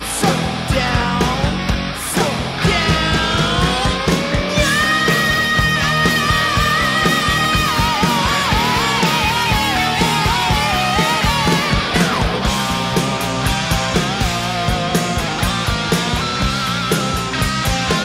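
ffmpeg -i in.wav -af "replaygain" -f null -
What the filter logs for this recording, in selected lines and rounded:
track_gain = -1.7 dB
track_peak = 0.545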